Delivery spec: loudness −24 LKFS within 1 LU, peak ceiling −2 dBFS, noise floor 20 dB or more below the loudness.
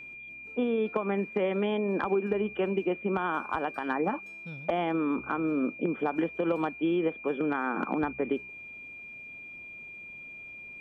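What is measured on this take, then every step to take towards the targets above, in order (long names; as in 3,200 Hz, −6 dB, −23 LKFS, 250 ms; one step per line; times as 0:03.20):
interfering tone 2,400 Hz; level of the tone −42 dBFS; integrated loudness −30.0 LKFS; sample peak −15.5 dBFS; target loudness −24.0 LKFS
→ notch filter 2,400 Hz, Q 30
level +6 dB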